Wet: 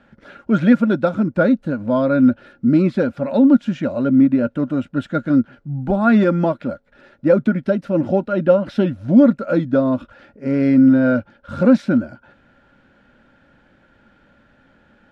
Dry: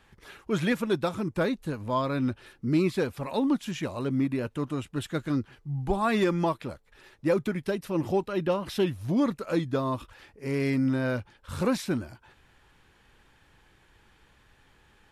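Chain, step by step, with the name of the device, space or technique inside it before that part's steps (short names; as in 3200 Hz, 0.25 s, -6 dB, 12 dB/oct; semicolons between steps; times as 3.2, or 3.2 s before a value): inside a cardboard box (LPF 5000 Hz 12 dB/oct; small resonant body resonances 240/560/1400 Hz, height 18 dB, ringing for 30 ms); gain -1.5 dB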